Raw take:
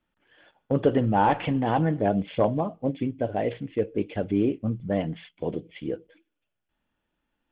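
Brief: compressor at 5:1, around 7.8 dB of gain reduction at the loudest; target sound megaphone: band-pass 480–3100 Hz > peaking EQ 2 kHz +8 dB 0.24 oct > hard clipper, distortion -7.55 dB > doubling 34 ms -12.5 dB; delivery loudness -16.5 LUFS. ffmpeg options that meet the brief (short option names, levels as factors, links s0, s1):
-filter_complex "[0:a]acompressor=threshold=0.0631:ratio=5,highpass=480,lowpass=3100,equalizer=f=2000:t=o:w=0.24:g=8,asoftclip=type=hard:threshold=0.0266,asplit=2[s0][s1];[s1]adelay=34,volume=0.237[s2];[s0][s2]amix=inputs=2:normalize=0,volume=11.9"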